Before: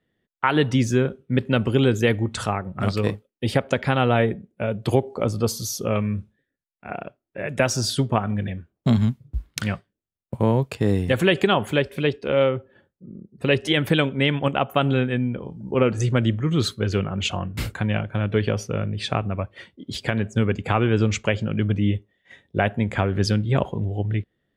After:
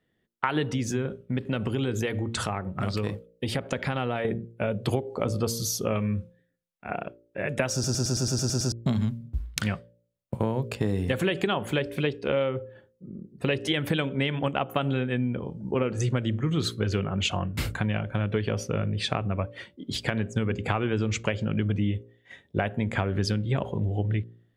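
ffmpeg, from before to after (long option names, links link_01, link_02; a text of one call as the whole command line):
ffmpeg -i in.wav -filter_complex "[0:a]asettb=1/sr,asplit=3[link_01][link_02][link_03];[link_01]atrim=end=0.734[link_04];[link_02]atrim=start=0.73:end=4.25,asetpts=PTS-STARTPTS,afade=type=in:duration=0.004:curve=qsin,afade=type=out:start_time=3.516:duration=0.004:curve=qsin,acompressor=threshold=-24dB:ratio=2.5:attack=3.2:release=140:knee=1:detection=peak[link_05];[link_03]atrim=start=4.246[link_06];[link_04][link_05]acrossfade=duration=0.004:curve1=hsin:curve2=qsin[link_07];[link_07][link_06]acrossfade=duration=0.004:curve1=qsin:curve2=hsin,asplit=10[link_08][link_09][link_10][link_11][link_12][link_13][link_14][link_15][link_16][link_17];[link_08]atrim=end=7.842[link_18];[link_09]atrim=start=7.728:end=7.842[link_19];[link_10]atrim=start=7.728:end=7.842[link_20];[link_11]atrim=start=7.728:end=7.842[link_21];[link_12]atrim=start=7.728:end=7.842[link_22];[link_13]atrim=start=7.728:end=7.842[link_23];[link_14]atrim=start=7.728:end=7.842[link_24];[link_15]atrim=start=7.728:end=7.842[link_25];[link_16]atrim=start=7.728:end=7.842[link_26];[link_17]atrim=start=8.718[link_27];[link_18][link_19]acrossfade=duration=0.004:curve1=hsin:curve2=hsin[link_28];[link_28][link_20]acrossfade=duration=0.004:curve1=hsin:curve2=hsin[link_29];[link_29][link_21]acrossfade=duration=0.004:curve1=hsin:curve2=hsin[link_30];[link_30][link_22]acrossfade=duration=0.004:curve1=hsin:curve2=hsin[link_31];[link_31][link_23]acrossfade=duration=0.004:curve1=hsin:curve2=hsin[link_32];[link_32][link_24]acrossfade=duration=0.004:curve1=hsin:curve2=hsin[link_33];[link_33][link_25]acrossfade=duration=0.004:curve1=hsin:curve2=hsin[link_34];[link_34][link_26]acrossfade=duration=0.004:curve1=hsin:curve2=hsin[link_35];[link_35][link_27]acrossfade=duration=0.004:curve1=hsin:curve2=hsin,bandreject=frequency=57.89:width_type=h:width=4,bandreject=frequency=115.78:width_type=h:width=4,bandreject=frequency=173.67:width_type=h:width=4,bandreject=frequency=231.56:width_type=h:width=4,bandreject=frequency=289.45:width_type=h:width=4,bandreject=frequency=347.34:width_type=h:width=4,bandreject=frequency=405.23:width_type=h:width=4,bandreject=frequency=463.12:width_type=h:width=4,bandreject=frequency=521.01:width_type=h:width=4,bandreject=frequency=578.9:width_type=h:width=4,acompressor=threshold=-22dB:ratio=6" out.wav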